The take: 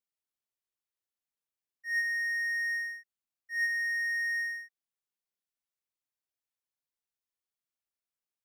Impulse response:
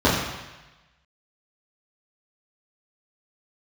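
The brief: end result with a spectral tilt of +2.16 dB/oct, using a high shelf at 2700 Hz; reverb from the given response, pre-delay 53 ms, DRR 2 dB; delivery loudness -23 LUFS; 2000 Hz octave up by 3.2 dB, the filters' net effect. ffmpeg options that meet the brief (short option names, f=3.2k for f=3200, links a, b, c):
-filter_complex "[0:a]equalizer=f=2k:t=o:g=5,highshelf=f=2.7k:g=-5,asplit=2[a][b];[1:a]atrim=start_sample=2205,adelay=53[c];[b][c]afir=irnorm=-1:irlink=0,volume=-23.5dB[d];[a][d]amix=inputs=2:normalize=0,volume=2.5dB"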